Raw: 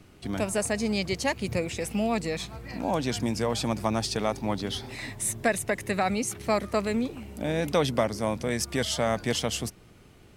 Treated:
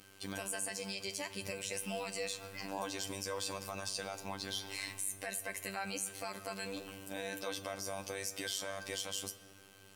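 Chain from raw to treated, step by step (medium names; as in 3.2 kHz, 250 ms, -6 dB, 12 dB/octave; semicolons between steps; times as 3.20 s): high-pass 52 Hz; tilt EQ +2.5 dB/octave; in parallel at +3 dB: compression, threshold -35 dBFS, peak gain reduction 16.5 dB; on the sum: peak limiter -17 dBFS, peak gain reduction 10 dB; robot voice 93.7 Hz; feedback comb 500 Hz, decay 0.17 s, harmonics all, mix 80%; saturation -20 dBFS, distortion -22 dB; on a send at -12 dB: reverberation RT60 1.8 s, pre-delay 14 ms; on the sum: speed mistake 24 fps film run at 25 fps; trim +2 dB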